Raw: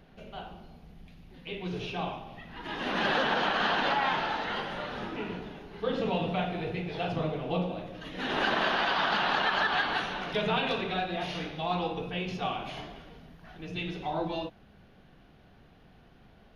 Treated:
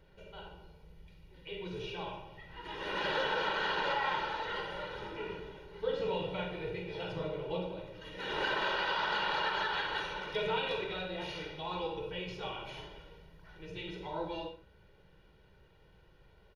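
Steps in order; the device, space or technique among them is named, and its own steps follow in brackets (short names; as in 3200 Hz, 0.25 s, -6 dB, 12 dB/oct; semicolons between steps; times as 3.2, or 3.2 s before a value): microphone above a desk (comb 2.1 ms, depth 82%; reverb RT60 0.35 s, pre-delay 42 ms, DRR 6.5 dB); gain -8 dB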